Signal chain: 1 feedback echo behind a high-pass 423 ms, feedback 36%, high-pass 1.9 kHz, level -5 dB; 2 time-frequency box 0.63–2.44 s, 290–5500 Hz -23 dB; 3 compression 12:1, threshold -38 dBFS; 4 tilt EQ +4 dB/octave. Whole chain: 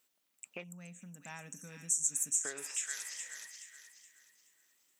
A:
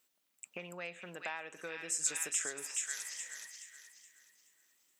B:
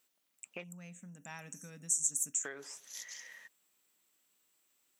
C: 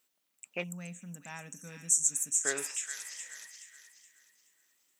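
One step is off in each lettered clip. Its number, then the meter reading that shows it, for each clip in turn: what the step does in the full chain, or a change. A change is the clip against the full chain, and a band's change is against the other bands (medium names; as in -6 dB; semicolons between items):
2, 125 Hz band -9.5 dB; 1, crest factor change +1.5 dB; 3, mean gain reduction 3.0 dB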